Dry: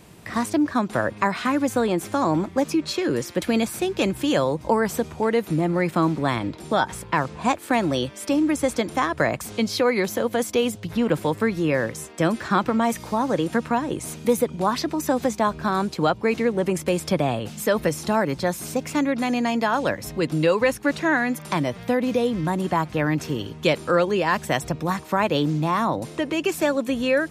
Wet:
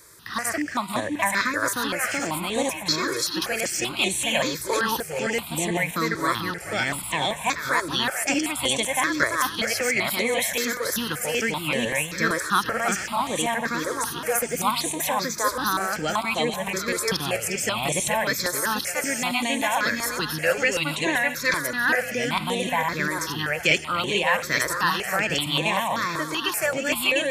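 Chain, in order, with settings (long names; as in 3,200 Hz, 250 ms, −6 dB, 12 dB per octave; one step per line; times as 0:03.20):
delay that plays each chunk backwards 439 ms, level −0.5 dB
tilt shelving filter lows −8.5 dB
on a send: feedback echo with a high-pass in the loop 433 ms, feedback 60%, high-pass 560 Hz, level −10 dB
on the sum: step-sequenced phaser 5.2 Hz 770–5,000 Hz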